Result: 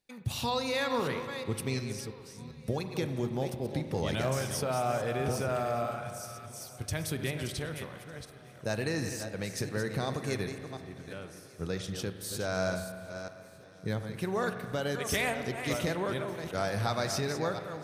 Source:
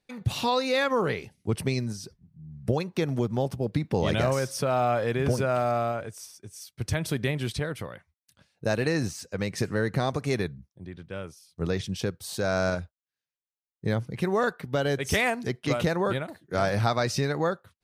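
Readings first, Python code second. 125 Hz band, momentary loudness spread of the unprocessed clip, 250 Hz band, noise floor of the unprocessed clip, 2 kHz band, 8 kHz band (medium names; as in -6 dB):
-6.0 dB, 14 LU, -5.5 dB, under -85 dBFS, -5.0 dB, -0.5 dB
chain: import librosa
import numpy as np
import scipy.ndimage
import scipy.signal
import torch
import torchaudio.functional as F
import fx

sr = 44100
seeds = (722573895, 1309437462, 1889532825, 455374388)

y = fx.reverse_delay(x, sr, ms=359, wet_db=-8.5)
y = fx.spec_repair(y, sr, seeds[0], start_s=5.86, length_s=0.74, low_hz=210.0, high_hz=1100.0, source='both')
y = fx.high_shelf(y, sr, hz=5500.0, db=9.0)
y = fx.echo_swing(y, sr, ms=1204, ratio=1.5, feedback_pct=71, wet_db=-24)
y = fx.rev_spring(y, sr, rt60_s=2.2, pass_ms=(38,), chirp_ms=20, drr_db=8.5)
y = y * 10.0 ** (-7.0 / 20.0)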